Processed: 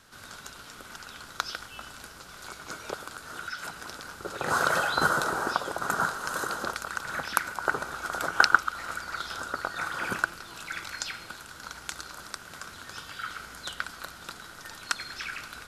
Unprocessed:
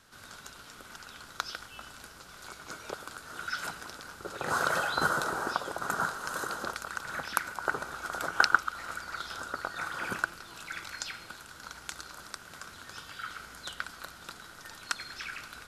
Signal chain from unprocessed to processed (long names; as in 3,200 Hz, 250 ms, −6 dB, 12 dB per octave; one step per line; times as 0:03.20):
0:02.98–0:03.87: downward compressor 2.5 to 1, threshold −39 dBFS, peak gain reduction 7 dB
level +3.5 dB